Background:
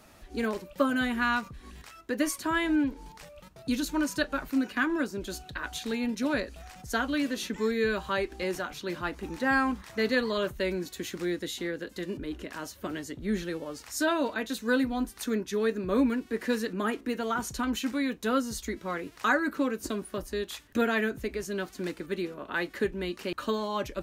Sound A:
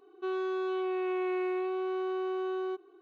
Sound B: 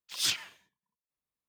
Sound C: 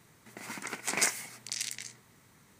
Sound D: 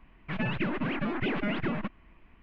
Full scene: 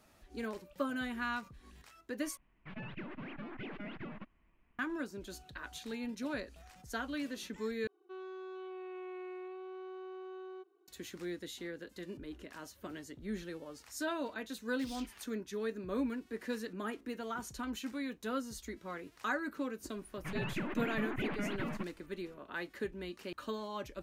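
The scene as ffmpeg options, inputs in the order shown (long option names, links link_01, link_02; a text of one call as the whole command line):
ffmpeg -i bed.wav -i cue0.wav -i cue1.wav -i cue2.wav -i cue3.wav -filter_complex "[4:a]asplit=2[link_01][link_02];[0:a]volume=-10dB[link_03];[2:a]acompressor=threshold=-37dB:ratio=6:attack=0.54:release=300:knee=1:detection=peak[link_04];[link_03]asplit=3[link_05][link_06][link_07];[link_05]atrim=end=2.374[link_08];[link_01]atrim=end=2.42,asetpts=PTS-STARTPTS,volume=-14.5dB[link_09];[link_06]atrim=start=4.786:end=7.874[link_10];[1:a]atrim=end=3.01,asetpts=PTS-STARTPTS,volume=-13.5dB[link_11];[link_07]atrim=start=10.876[link_12];[link_04]atrim=end=1.48,asetpts=PTS-STARTPTS,volume=-7.5dB,afade=type=in:duration=0.004:curve=hsin,afade=type=out:start_time=1.476:duration=0.004:curve=hsin,adelay=14700[link_13];[link_02]atrim=end=2.42,asetpts=PTS-STARTPTS,volume=-7.5dB,afade=type=in:duration=0.004:curve=hsin,afade=type=out:start_time=2.416:duration=0.004:curve=hsin,adelay=19960[link_14];[link_08][link_09]acrossfade=duration=0.004:curve1=hsin:curve2=hsin[link_15];[link_15][link_10]acrossfade=duration=0.004:curve1=hsin:curve2=hsin[link_16];[link_16][link_11]acrossfade=duration=0.004:curve1=hsin:curve2=hsin[link_17];[link_17][link_12]acrossfade=duration=0.004:curve1=hsin:curve2=hsin[link_18];[link_18][link_13][link_14]amix=inputs=3:normalize=0" out.wav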